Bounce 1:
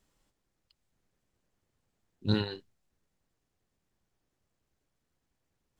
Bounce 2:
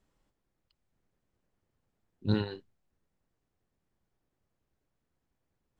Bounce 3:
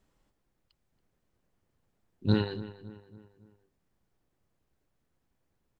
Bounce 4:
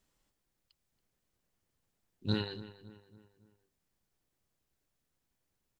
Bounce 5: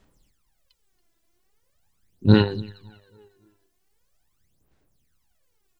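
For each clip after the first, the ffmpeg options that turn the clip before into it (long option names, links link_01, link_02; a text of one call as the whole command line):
ffmpeg -i in.wav -af "highshelf=frequency=2900:gain=-9.5" out.wav
ffmpeg -i in.wav -filter_complex "[0:a]asplit=2[link_01][link_02];[link_02]adelay=279,lowpass=frequency=2700:poles=1,volume=-15dB,asplit=2[link_03][link_04];[link_04]adelay=279,lowpass=frequency=2700:poles=1,volume=0.48,asplit=2[link_05][link_06];[link_06]adelay=279,lowpass=frequency=2700:poles=1,volume=0.48,asplit=2[link_07][link_08];[link_08]adelay=279,lowpass=frequency=2700:poles=1,volume=0.48[link_09];[link_01][link_03][link_05][link_07][link_09]amix=inputs=5:normalize=0,volume=3dB" out.wav
ffmpeg -i in.wav -af "highshelf=frequency=2300:gain=11,volume=-7.5dB" out.wav
ffmpeg -i in.wav -af "aphaser=in_gain=1:out_gain=1:delay=3:decay=0.76:speed=0.42:type=sinusoidal,volume=5.5dB" out.wav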